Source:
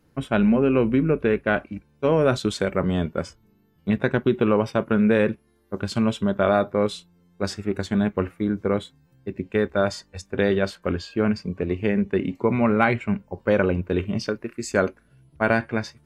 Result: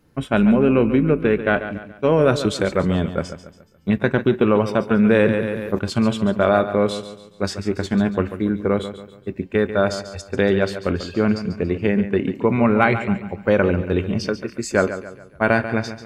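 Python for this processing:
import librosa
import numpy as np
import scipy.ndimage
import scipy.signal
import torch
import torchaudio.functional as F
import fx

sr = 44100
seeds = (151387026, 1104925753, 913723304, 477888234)

p1 = x + fx.echo_feedback(x, sr, ms=141, feedback_pct=41, wet_db=-11.5, dry=0)
p2 = fx.env_flatten(p1, sr, amount_pct=50, at=(4.99, 5.79))
y = F.gain(torch.from_numpy(p2), 3.0).numpy()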